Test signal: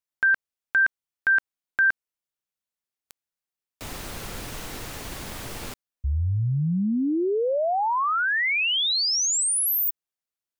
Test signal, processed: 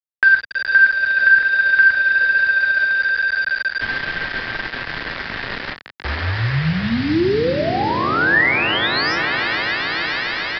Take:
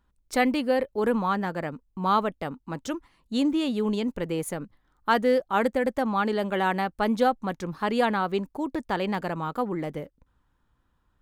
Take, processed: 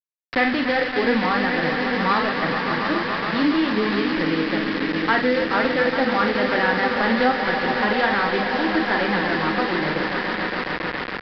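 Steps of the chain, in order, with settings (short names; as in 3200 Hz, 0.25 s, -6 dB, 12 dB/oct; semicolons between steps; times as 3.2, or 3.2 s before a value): block floating point 3-bit; dynamic EQ 330 Hz, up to +6 dB, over -45 dBFS, Q 5.2; doubler 44 ms -6.5 dB; swelling echo 0.14 s, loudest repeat 5, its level -12 dB; in parallel at -1 dB: limiter -14.5 dBFS; on the sum: careless resampling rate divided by 3×, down filtered, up hold; flange 1.2 Hz, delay 5.7 ms, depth 4 ms, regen +58%; crossover distortion -44.5 dBFS; bit-crush 5-bit; bell 1800 Hz +10.5 dB 0.59 oct; downsampling 11025 Hz; three-band squash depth 40%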